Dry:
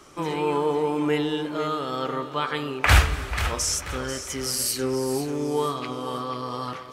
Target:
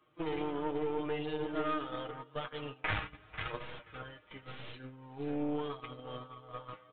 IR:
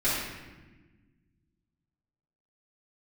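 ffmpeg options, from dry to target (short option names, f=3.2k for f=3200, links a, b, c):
-af "highpass=f=42:w=0.5412,highpass=f=42:w=1.3066,acompressor=threshold=-33dB:ratio=2,aecho=1:1:6.4:0.86,agate=range=-14dB:threshold=-31dB:ratio=16:detection=peak,flanger=delay=8.2:depth=1.7:regen=24:speed=0.82:shape=sinusoidal,aeval=exprs='0.15*(cos(1*acos(clip(val(0)/0.15,-1,1)))-cos(1*PI/2))+0.0168*(cos(6*acos(clip(val(0)/0.15,-1,1)))-cos(6*PI/2))':c=same,aresample=8000,aresample=44100,volume=-4dB"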